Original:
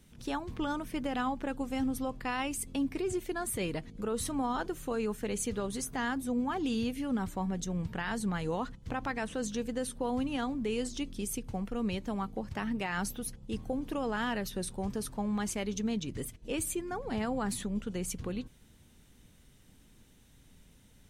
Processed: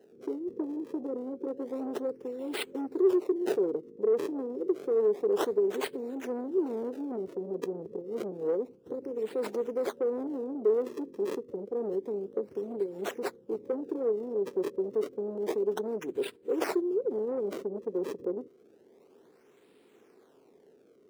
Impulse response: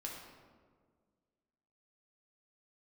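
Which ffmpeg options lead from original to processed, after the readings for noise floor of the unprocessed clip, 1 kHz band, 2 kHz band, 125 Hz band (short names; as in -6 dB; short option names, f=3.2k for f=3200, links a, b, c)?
-60 dBFS, -6.5 dB, -7.0 dB, under -10 dB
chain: -filter_complex "[0:a]afftfilt=real='re*(1-between(b*sr/4096,550,5300))':imag='im*(1-between(b*sr/4096,550,5300))':win_size=4096:overlap=0.75,acrossover=split=3400[a][b];[a]asoftclip=type=tanh:threshold=-32dB[c];[b]acrusher=samples=34:mix=1:aa=0.000001:lfo=1:lforange=54.4:lforate=0.29[d];[c][d]amix=inputs=2:normalize=0,highpass=f=400:t=q:w=4.9,volume=2dB"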